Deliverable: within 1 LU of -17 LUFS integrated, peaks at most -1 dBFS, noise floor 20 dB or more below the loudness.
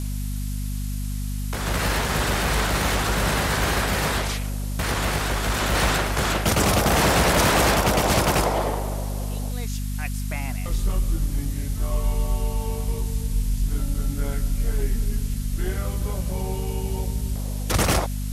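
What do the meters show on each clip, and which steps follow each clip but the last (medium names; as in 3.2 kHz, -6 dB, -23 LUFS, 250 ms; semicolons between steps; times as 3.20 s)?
hum 50 Hz; highest harmonic 250 Hz; hum level -25 dBFS; noise floor -28 dBFS; noise floor target -44 dBFS; loudness -24.0 LUFS; peak level -10.5 dBFS; loudness target -17.0 LUFS
-> hum notches 50/100/150/200/250 Hz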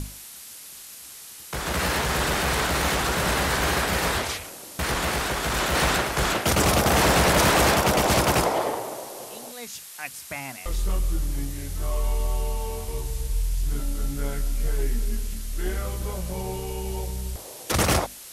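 hum not found; noise floor -42 dBFS; noise floor target -45 dBFS
-> noise reduction 6 dB, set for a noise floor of -42 dBFS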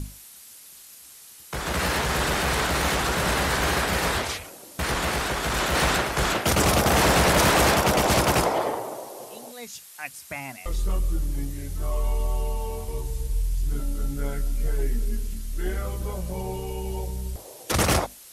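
noise floor -47 dBFS; loudness -24.5 LUFS; peak level -11.5 dBFS; loudness target -17.0 LUFS
-> trim +7.5 dB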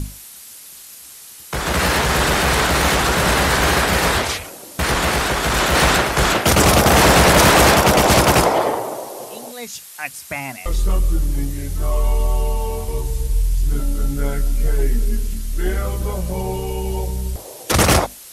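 loudness -17.0 LUFS; peak level -4.0 dBFS; noise floor -39 dBFS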